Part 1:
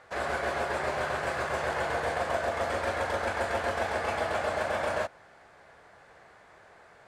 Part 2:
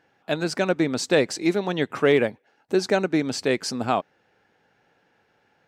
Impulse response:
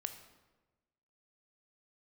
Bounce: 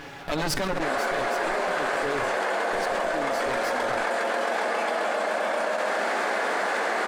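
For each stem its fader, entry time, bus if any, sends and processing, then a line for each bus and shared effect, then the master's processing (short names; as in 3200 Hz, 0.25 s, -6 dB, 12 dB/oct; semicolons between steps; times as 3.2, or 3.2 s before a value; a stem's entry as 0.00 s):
0.0 dB, 0.70 s, no send, echo send -19 dB, steep high-pass 200 Hz 72 dB/oct
-14.5 dB, 0.00 s, no send, echo send -17.5 dB, minimum comb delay 7.1 ms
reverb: off
echo: feedback echo 69 ms, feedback 58%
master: fast leveller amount 100%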